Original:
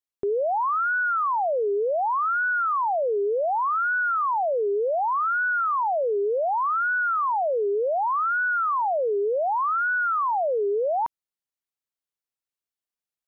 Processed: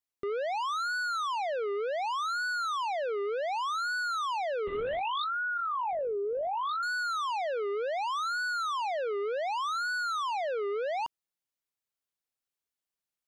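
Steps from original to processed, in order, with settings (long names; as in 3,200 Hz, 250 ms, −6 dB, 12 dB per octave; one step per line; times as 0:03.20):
soft clipping −30.5 dBFS, distortion −12 dB
0:04.67–0:06.83: linear-prediction vocoder at 8 kHz whisper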